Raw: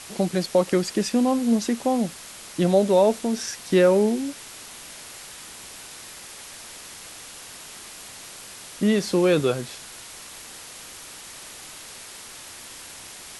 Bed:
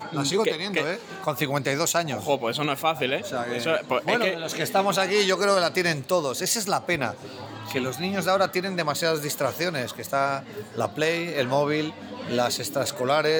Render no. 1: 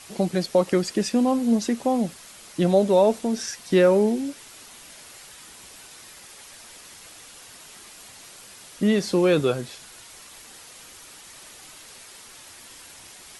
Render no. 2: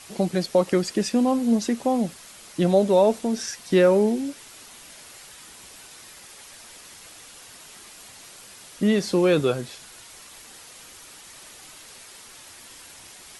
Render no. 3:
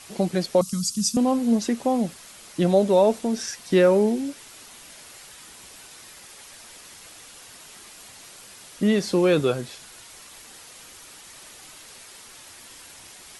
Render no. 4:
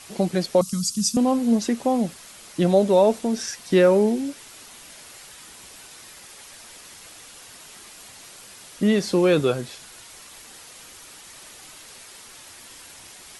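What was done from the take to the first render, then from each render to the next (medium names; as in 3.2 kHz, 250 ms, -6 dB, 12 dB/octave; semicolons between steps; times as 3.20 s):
noise reduction 6 dB, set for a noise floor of -42 dBFS
no audible change
0.61–1.17 s: FFT filter 230 Hz 0 dB, 340 Hz -29 dB, 770 Hz -26 dB, 1.2 kHz -7 dB, 1.8 kHz -23 dB, 3 kHz -8 dB, 5.8 kHz +9 dB
trim +1 dB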